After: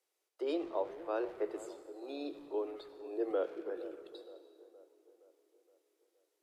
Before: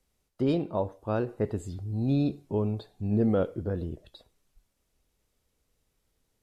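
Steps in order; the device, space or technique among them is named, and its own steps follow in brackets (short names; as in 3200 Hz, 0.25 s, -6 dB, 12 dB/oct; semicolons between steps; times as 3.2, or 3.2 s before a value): steep high-pass 310 Hz 96 dB/oct; saturated reverb return (on a send at -8 dB: reverb RT60 2.0 s, pre-delay 68 ms + soft clip -36.5 dBFS, distortion -6 dB); 3.31–3.77 on the sum: Chebyshev high-pass 200 Hz, order 2; band-limited delay 0.468 s, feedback 51%, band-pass 540 Hz, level -15 dB; gain -5.5 dB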